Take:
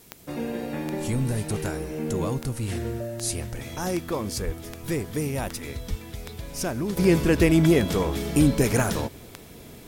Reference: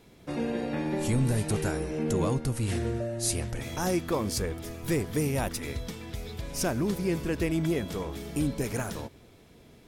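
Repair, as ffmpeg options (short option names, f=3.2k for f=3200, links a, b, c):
-filter_complex "[0:a]adeclick=t=4,asplit=3[a][b][c];[a]afade=t=out:st=4.45:d=0.02[d];[b]highpass=f=140:w=0.5412,highpass=f=140:w=1.3066,afade=t=in:st=4.45:d=0.02,afade=t=out:st=4.57:d=0.02[e];[c]afade=t=in:st=4.57:d=0.02[f];[d][e][f]amix=inputs=3:normalize=0,asplit=3[g][h][i];[g]afade=t=out:st=5.89:d=0.02[j];[h]highpass=f=140:w=0.5412,highpass=f=140:w=1.3066,afade=t=in:st=5.89:d=0.02,afade=t=out:st=6.01:d=0.02[k];[i]afade=t=in:st=6.01:d=0.02[l];[j][k][l]amix=inputs=3:normalize=0,agate=range=-21dB:threshold=-35dB,asetnsamples=n=441:p=0,asendcmd='6.97 volume volume -9.5dB',volume=0dB"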